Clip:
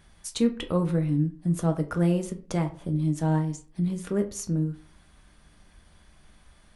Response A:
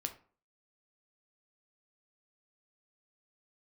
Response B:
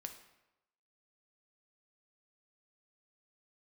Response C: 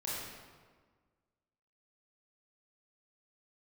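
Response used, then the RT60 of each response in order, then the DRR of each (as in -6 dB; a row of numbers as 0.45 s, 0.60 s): A; 0.45 s, 0.95 s, 1.5 s; 6.0 dB, 5.5 dB, -7.5 dB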